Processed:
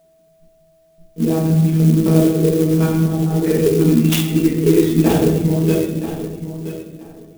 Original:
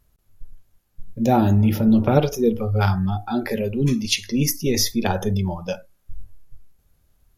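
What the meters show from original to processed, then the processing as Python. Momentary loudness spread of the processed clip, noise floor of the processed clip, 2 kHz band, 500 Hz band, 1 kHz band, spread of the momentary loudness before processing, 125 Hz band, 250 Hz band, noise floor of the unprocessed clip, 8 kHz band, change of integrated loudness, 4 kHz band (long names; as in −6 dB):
13 LU, −55 dBFS, +0.5 dB, +6.5 dB, −4.5 dB, 8 LU, +6.0 dB, +6.5 dB, −64 dBFS, −1.5 dB, +5.0 dB, −2.0 dB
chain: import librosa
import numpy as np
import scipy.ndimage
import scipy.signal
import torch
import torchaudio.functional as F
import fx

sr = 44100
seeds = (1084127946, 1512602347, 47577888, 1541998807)

p1 = fx.lpc_monotone(x, sr, seeds[0], pitch_hz=160.0, order=10)
p2 = fx.highpass(p1, sr, hz=94.0, slope=6)
p3 = fx.small_body(p2, sr, hz=(200.0, 310.0), ring_ms=25, db=13)
p4 = fx.level_steps(p3, sr, step_db=23)
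p5 = p3 + F.gain(torch.from_numpy(p4), -2.0).numpy()
p6 = fx.peak_eq(p5, sr, hz=410.0, db=11.5, octaves=0.32)
p7 = p6 + fx.echo_feedback(p6, sr, ms=974, feedback_pct=20, wet_db=-12.5, dry=0)
p8 = fx.room_shoebox(p7, sr, seeds[1], volume_m3=250.0, walls='mixed', distance_m=1.6)
p9 = fx.rider(p8, sr, range_db=4, speed_s=2.0)
p10 = p9 + 10.0 ** (-42.0 / 20.0) * np.sin(2.0 * np.pi * 650.0 * np.arange(len(p9)) / sr)
p11 = fx.high_shelf(p10, sr, hz=2700.0, db=10.0)
p12 = fx.clock_jitter(p11, sr, seeds[2], jitter_ms=0.05)
y = F.gain(torch.from_numpy(p12), -10.5).numpy()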